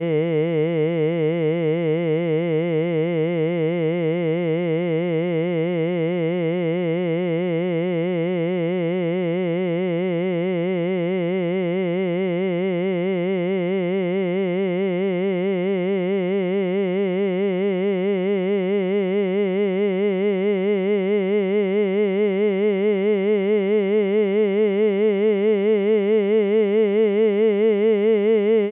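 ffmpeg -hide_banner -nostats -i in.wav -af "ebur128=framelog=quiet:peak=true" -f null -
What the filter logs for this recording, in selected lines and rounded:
Integrated loudness:
  I:         -20.8 LUFS
  Threshold: -30.7 LUFS
Loudness range:
  LRA:         3.8 LU
  Threshold: -40.9 LUFS
  LRA low:   -22.3 LUFS
  LRA high:  -18.5 LUFS
True peak:
  Peak:       -9.9 dBFS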